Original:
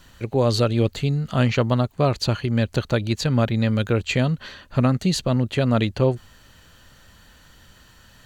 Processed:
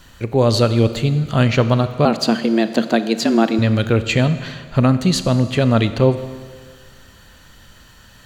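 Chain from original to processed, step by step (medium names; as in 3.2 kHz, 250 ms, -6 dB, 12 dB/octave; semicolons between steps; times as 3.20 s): 2.05–3.59 s: frequency shift +110 Hz; Schroeder reverb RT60 1.7 s, combs from 27 ms, DRR 11.5 dB; trim +4.5 dB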